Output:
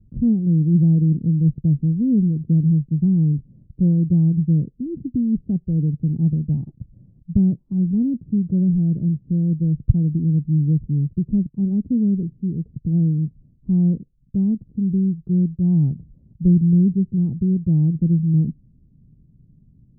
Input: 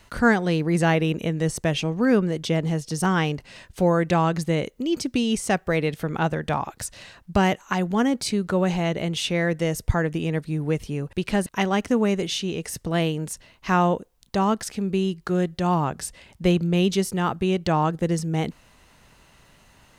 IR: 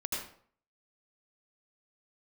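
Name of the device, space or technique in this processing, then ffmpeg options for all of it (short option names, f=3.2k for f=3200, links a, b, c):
the neighbour's flat through the wall: -filter_complex "[0:a]lowpass=f=260:w=0.5412,lowpass=f=260:w=1.3066,equalizer=f=140:t=o:w=0.8:g=7.5,asettb=1/sr,asplit=3[a][b][c];[a]atrim=end=15.514[d];[b]atrim=start=15.51:end=16.49,asetpts=PTS-STARTPTS,afade=t=in:d=0.004:c=qsin,afade=t=out:st=0.976:d=0.004:c=qsin,equalizer=f=840:t=o:w=0.8:g=5.5[e];[c]atrim=start=16.486[f];[d][e]acrossfade=d=0.004:c1=hsin:c2=qsin[g];[g][f]acrossfade=d=0.004:c1=qsin:c2=hsin,volume=3.5dB"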